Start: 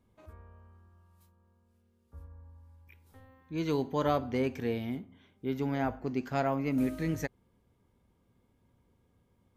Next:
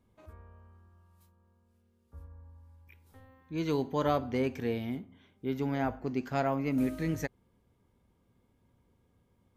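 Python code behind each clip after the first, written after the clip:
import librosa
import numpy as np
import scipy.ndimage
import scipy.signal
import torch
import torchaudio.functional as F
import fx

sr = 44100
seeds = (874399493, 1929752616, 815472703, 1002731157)

y = x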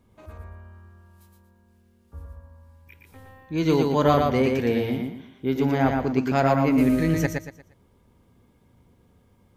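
y = fx.echo_feedback(x, sr, ms=117, feedback_pct=30, wet_db=-3.5)
y = y * librosa.db_to_amplitude(8.5)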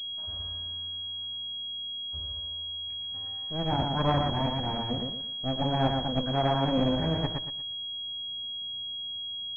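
y = fx.lower_of_two(x, sr, delay_ms=1.2)
y = fx.pwm(y, sr, carrier_hz=3300.0)
y = y * librosa.db_to_amplitude(-3.5)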